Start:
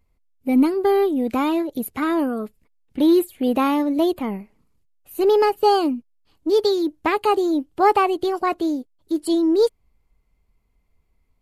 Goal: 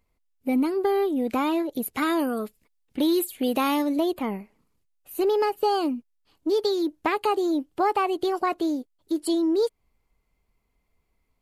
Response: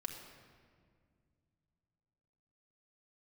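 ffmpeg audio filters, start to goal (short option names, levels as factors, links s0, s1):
-filter_complex "[0:a]lowshelf=f=180:g=-8,acompressor=threshold=0.0891:ratio=3,asplit=3[s0][s1][s2];[s0]afade=t=out:st=1.93:d=0.02[s3];[s1]adynamicequalizer=threshold=0.00708:dfrequency=2600:dqfactor=0.7:tfrequency=2600:tqfactor=0.7:attack=5:release=100:ratio=0.375:range=4:mode=boostabove:tftype=highshelf,afade=t=in:st=1.93:d=0.02,afade=t=out:st=3.95:d=0.02[s4];[s2]afade=t=in:st=3.95:d=0.02[s5];[s3][s4][s5]amix=inputs=3:normalize=0"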